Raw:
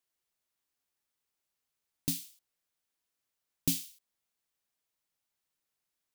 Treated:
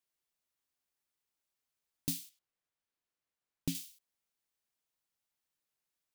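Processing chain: 2.29–3.75 s: treble shelf 4.9 kHz -11 dB; trim -3 dB

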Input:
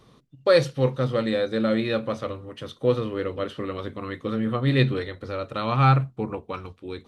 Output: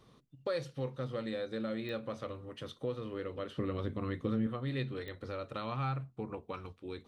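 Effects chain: compression 2.5:1, threshold -30 dBFS, peak gain reduction 11.5 dB; 3.57–4.47 s: bass shelf 330 Hz +10 dB; clicks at 1.89/5.08 s, -24 dBFS; trim -7 dB

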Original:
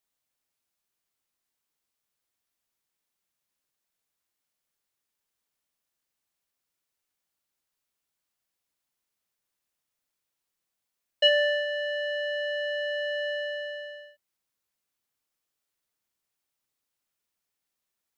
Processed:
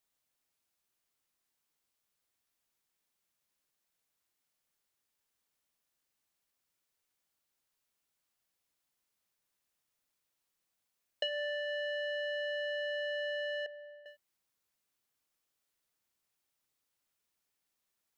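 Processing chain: compression 8:1, threshold -34 dBFS, peak gain reduction 17.5 dB; 13.66–14.06 s: band-pass filter 860 Hz, Q 3.2

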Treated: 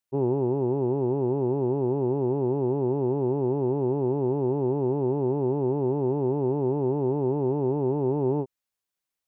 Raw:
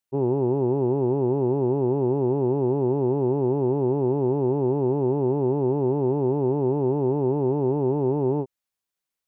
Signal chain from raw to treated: gain riding; trim -2.5 dB

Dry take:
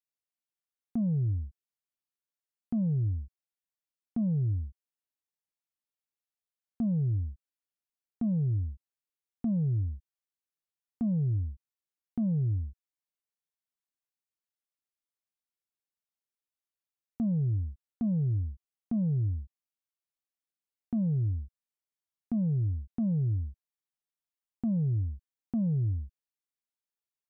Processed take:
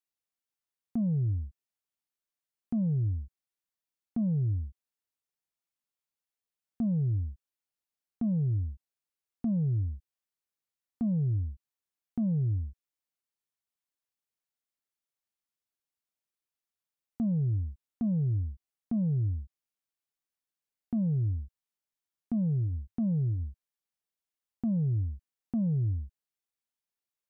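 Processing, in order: 21.36–23.43 s: dynamic bell 100 Hz, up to -3 dB, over -45 dBFS, Q 7.4

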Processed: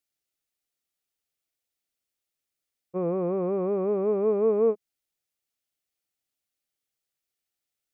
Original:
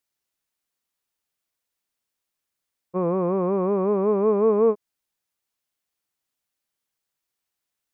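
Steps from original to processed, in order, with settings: graphic EQ with 31 bands 200 Hz -4 dB, 1 kHz -11 dB, 1.6 kHz -4 dB; trim -3 dB

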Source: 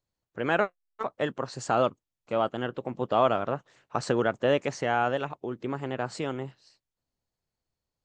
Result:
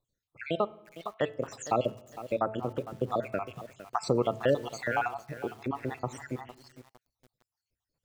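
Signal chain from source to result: random holes in the spectrogram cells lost 68%; in parallel at +1 dB: compression 10:1, threshold -34 dBFS, peak gain reduction 14.5 dB; on the sum: de-hum 218.8 Hz, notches 14; on a send at -20 dB: reverberation RT60 1.1 s, pre-delay 3 ms; 4.15–4.96 s: on the sum: small samples zeroed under -50 dBFS; bit-crushed delay 457 ms, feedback 35%, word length 7-bit, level -14 dB; trim -2.5 dB

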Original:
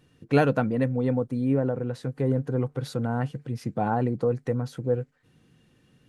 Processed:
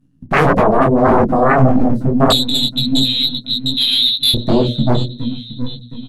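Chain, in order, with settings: partial rectifier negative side -7 dB; power-law waveshaper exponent 1.4; peaking EQ 2.4 kHz -10.5 dB 2.1 oct; waveshaping leveller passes 1; 2.30–4.34 s: frequency inversion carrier 4 kHz; resonant low shelf 330 Hz +10 dB, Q 3; feedback delay 717 ms, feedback 43%, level -16 dB; sine folder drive 18 dB, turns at -3 dBFS; hum notches 60/120/180/240/300/360/420/480/540/600 Hz; detune thickener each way 59 cents; trim -1 dB

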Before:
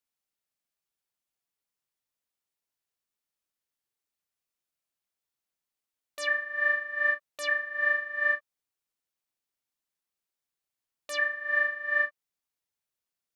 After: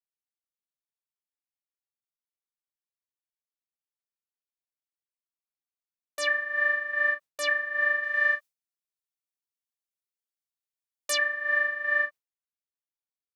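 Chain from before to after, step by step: gate with hold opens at -30 dBFS; 8.03–11.18 s: treble shelf 2.4 kHz +9.5 dB; compression 3:1, threshold -28 dBFS, peak gain reduction 7.5 dB; trim +5 dB

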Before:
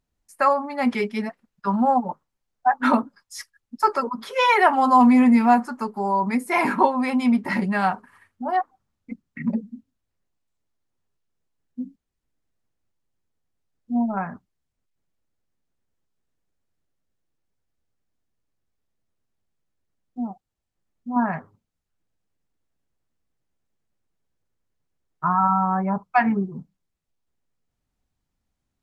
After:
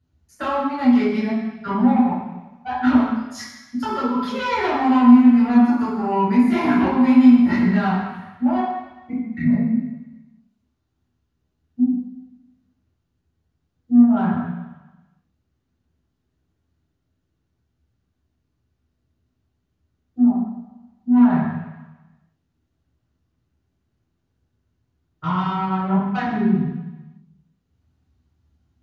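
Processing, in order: compression 2:1, threshold -29 dBFS, peak gain reduction 10 dB; saturation -22.5 dBFS, distortion -15 dB; reverberation RT60 1.0 s, pre-delay 3 ms, DRR -9 dB; trim -5 dB

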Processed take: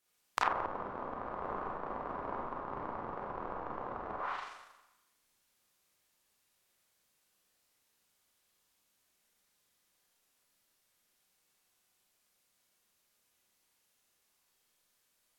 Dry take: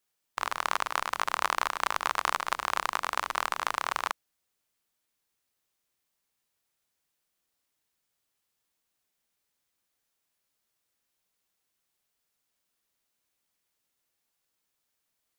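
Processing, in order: Schroeder reverb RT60 1 s, combs from 31 ms, DRR -4.5 dB; low-pass that closes with the level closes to 410 Hz, closed at -22.5 dBFS

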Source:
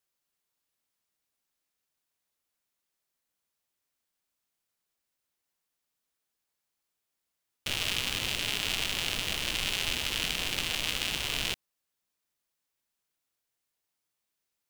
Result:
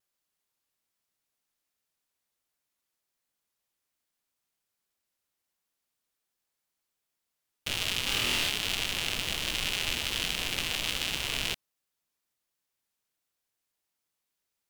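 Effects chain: vibrato 1.3 Hz 35 cents; 8.05–8.49 s: flutter echo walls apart 4.3 m, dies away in 0.67 s

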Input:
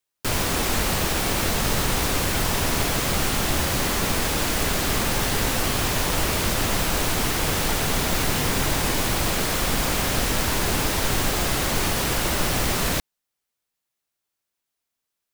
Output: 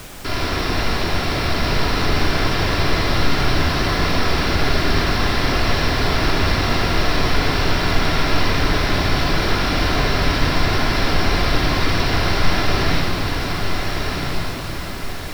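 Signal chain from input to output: rippled Chebyshev low-pass 5.7 kHz, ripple 3 dB; echo that smears into a reverb 1372 ms, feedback 43%, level -3.5 dB; simulated room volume 3800 m³, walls mixed, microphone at 3.1 m; added noise pink -36 dBFS

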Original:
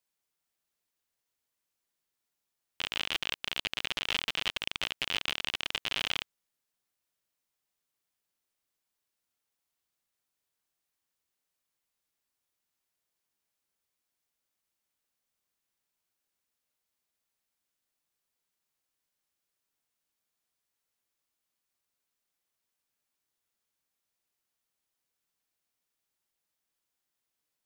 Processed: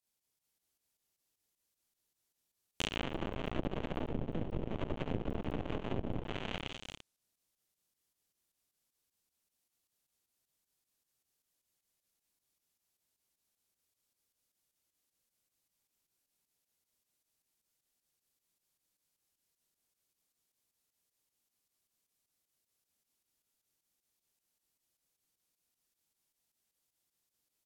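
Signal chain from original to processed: tracing distortion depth 0.071 ms; peaking EQ 1.4 kHz -7.5 dB 2.6 oct; multi-tap echo 71/243/443/559/784 ms -5.5/-8.5/-3/-13.5/-13.5 dB; low-pass that closes with the level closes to 440 Hz, closed at -27.5 dBFS; volume shaper 155 bpm, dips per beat 2, -10 dB, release 96 ms; trim +2 dB

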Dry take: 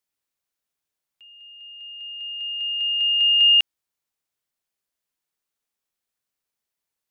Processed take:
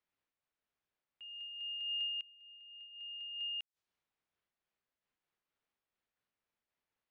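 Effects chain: inverted gate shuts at -30 dBFS, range -26 dB; level-controlled noise filter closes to 2.7 kHz, open at -42 dBFS; random flutter of the level, depth 60%; trim +2 dB

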